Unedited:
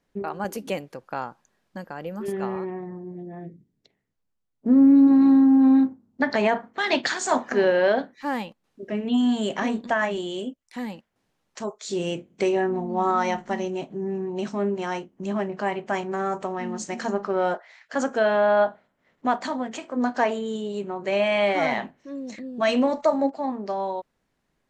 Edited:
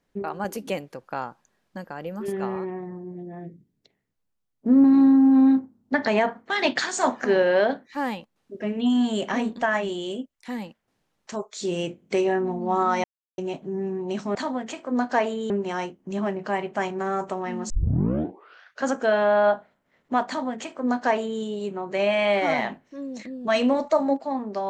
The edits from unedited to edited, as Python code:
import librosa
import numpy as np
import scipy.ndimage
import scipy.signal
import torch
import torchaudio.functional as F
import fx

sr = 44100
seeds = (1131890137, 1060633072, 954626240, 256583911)

y = fx.edit(x, sr, fx.cut(start_s=4.84, length_s=0.28),
    fx.silence(start_s=13.32, length_s=0.34),
    fx.tape_start(start_s=16.83, length_s=1.17),
    fx.duplicate(start_s=19.4, length_s=1.15, to_s=14.63), tone=tone)